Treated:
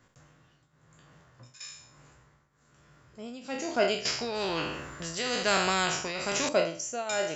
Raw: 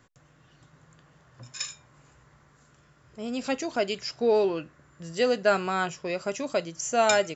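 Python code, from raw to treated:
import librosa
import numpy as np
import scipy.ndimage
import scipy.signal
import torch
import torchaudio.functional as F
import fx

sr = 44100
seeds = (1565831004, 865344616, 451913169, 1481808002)

y = fx.spec_trails(x, sr, decay_s=0.51)
y = fx.tremolo_shape(y, sr, shape='triangle', hz=1.1, depth_pct=85)
y = fx.spectral_comp(y, sr, ratio=2.0, at=(4.05, 6.49))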